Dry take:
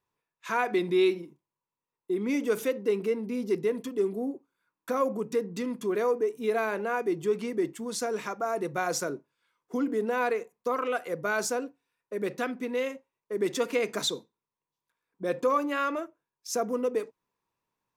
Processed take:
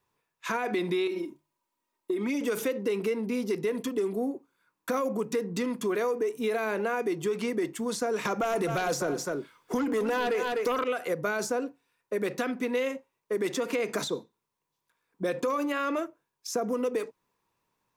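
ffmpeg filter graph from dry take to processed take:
ffmpeg -i in.wav -filter_complex "[0:a]asettb=1/sr,asplit=3[link_01][link_02][link_03];[link_01]atrim=end=1.074[link_04];[link_02]atrim=start=1.07:end=2.41,asetpts=PTS-STARTPTS,afade=type=in:duration=0.004:curve=qsin,afade=type=out:start_time=1.336:duration=0.004:curve=qsin,bandreject=frequency=50:width_type=h:width=6,bandreject=frequency=100:width_type=h:width=6,bandreject=frequency=150:width_type=h:width=6,aecho=1:1:3.2:0.7,atrim=end_sample=59094,acompressor=threshold=-28dB:ratio=5:attack=3.2:release=140:knee=1:detection=peak[link_05];[link_03]atrim=start=2.406[link_06];[link_04][link_05]acrossfade=duration=0.004:curve1=hsin:curve2=qsin[link_07];[link_07][link_06]acrossfade=duration=0.004:curve1=qsin:curve2=hsin,asettb=1/sr,asplit=3[link_08][link_09][link_10];[link_08]atrim=end=8.254[link_11];[link_09]atrim=start=8.25:end=10.84,asetpts=PTS-STARTPTS,afade=type=in:duration=0.004:curve=qsin,afade=type=out:start_time=2.586:duration=0.004:curve=qsin,aeval=exprs='0.178*sin(PI/2*2*val(0)/0.178)':channel_layout=same,aecho=1:1:250:0.224,atrim=end_sample=114219[link_12];[link_10]atrim=start=10.836[link_13];[link_11][link_12]acrossfade=duration=0.004:curve1=hsin:curve2=qsin[link_14];[link_14][link_13]acrossfade=duration=0.004:curve1=qsin:curve2=hsin,alimiter=limit=-22dB:level=0:latency=1,acrossover=split=580|1700[link_15][link_16][link_17];[link_15]acompressor=threshold=-36dB:ratio=4[link_18];[link_16]acompressor=threshold=-40dB:ratio=4[link_19];[link_17]acompressor=threshold=-43dB:ratio=4[link_20];[link_18][link_19][link_20]amix=inputs=3:normalize=0,volume=6.5dB" out.wav

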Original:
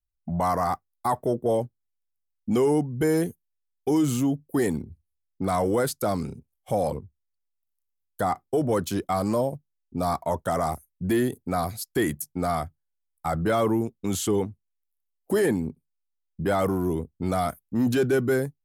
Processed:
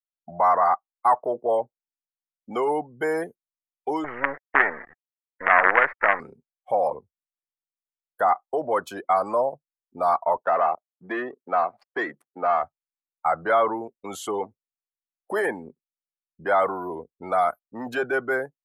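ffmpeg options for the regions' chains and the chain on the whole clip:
ffmpeg -i in.wav -filter_complex "[0:a]asettb=1/sr,asplit=3[link_01][link_02][link_03];[link_01]atrim=end=4.044[link_04];[link_02]atrim=start=4.04:end=6.2,asetpts=PTS-STARTPTS,afade=type=in:duration=0.004:curve=qsin,afade=type=out:start_time=2.156:duration=0.004:curve=qsin,acrusher=bits=4:dc=4:mix=0:aa=0.000001,lowpass=frequency=1900:width_type=q:width=4.4[link_05];[link_03]atrim=start=6.196[link_06];[link_04][link_05]acrossfade=duration=0.004:curve1=hsin:curve2=qsin[link_07];[link_07][link_06]acrossfade=duration=0.004:curve1=qsin:curve2=hsin,asettb=1/sr,asplit=3[link_08][link_09][link_10];[link_08]atrim=end=10.374[link_11];[link_09]atrim=start=10.37:end=12.63,asetpts=PTS-STARTPTS,afade=type=in:duration=0.004:curve=qsin,afade=type=out:start_time=2.256:duration=0.004:curve=qsin,highpass=190,adynamicsmooth=sensitivity=6.5:basefreq=620[link_12];[link_10]atrim=start=12.626[link_13];[link_11][link_12]acrossfade=duration=0.004:curve1=hsin:curve2=qsin[link_14];[link_14][link_13]acrossfade=duration=0.004:curve1=qsin:curve2=hsin,equalizer=frequency=92:width_type=o:width=1.3:gain=-9,afftdn=noise_reduction=18:noise_floor=-41,acrossover=split=580 2100:gain=0.0794 1 0.158[link_15][link_16][link_17];[link_15][link_16][link_17]amix=inputs=3:normalize=0,volume=8.5dB" out.wav

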